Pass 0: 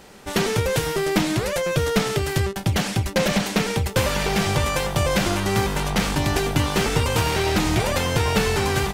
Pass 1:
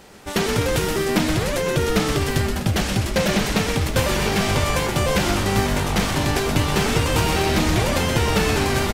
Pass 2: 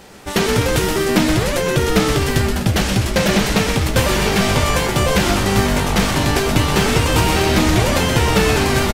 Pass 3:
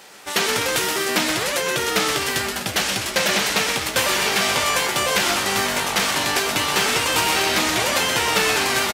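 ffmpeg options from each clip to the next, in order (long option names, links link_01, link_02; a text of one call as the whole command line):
ffmpeg -i in.wav -filter_complex "[0:a]asplit=9[link_01][link_02][link_03][link_04][link_05][link_06][link_07][link_08][link_09];[link_02]adelay=125,afreqshift=-150,volume=-5.5dB[link_10];[link_03]adelay=250,afreqshift=-300,volume=-10.2dB[link_11];[link_04]adelay=375,afreqshift=-450,volume=-15dB[link_12];[link_05]adelay=500,afreqshift=-600,volume=-19.7dB[link_13];[link_06]adelay=625,afreqshift=-750,volume=-24.4dB[link_14];[link_07]adelay=750,afreqshift=-900,volume=-29.2dB[link_15];[link_08]adelay=875,afreqshift=-1050,volume=-33.9dB[link_16];[link_09]adelay=1000,afreqshift=-1200,volume=-38.6dB[link_17];[link_01][link_10][link_11][link_12][link_13][link_14][link_15][link_16][link_17]amix=inputs=9:normalize=0" out.wav
ffmpeg -i in.wav -filter_complex "[0:a]asplit=2[link_01][link_02];[link_02]adelay=16,volume=-11.5dB[link_03];[link_01][link_03]amix=inputs=2:normalize=0,volume=4dB" out.wav
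ffmpeg -i in.wav -af "highpass=frequency=1100:poles=1,volume=1.5dB" out.wav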